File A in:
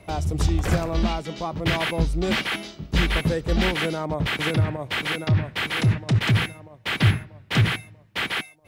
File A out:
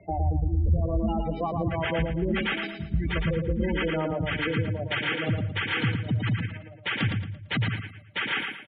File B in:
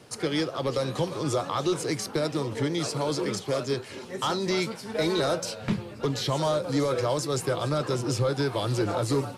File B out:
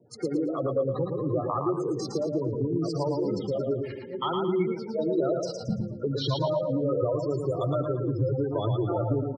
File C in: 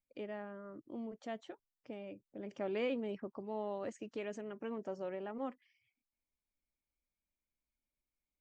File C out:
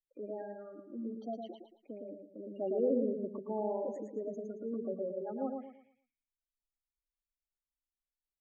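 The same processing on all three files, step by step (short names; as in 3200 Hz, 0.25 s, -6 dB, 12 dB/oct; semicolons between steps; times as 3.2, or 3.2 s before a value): notches 50/100/150/200 Hz; spectral gate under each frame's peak -10 dB strong; tone controls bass +1 dB, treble -7 dB; compressor, threshold -28 dBFS; air absorption 67 m; on a send: feedback echo 0.113 s, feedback 38%, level -4 dB; on the sum: three-band expander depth 40%; gain +3.5 dB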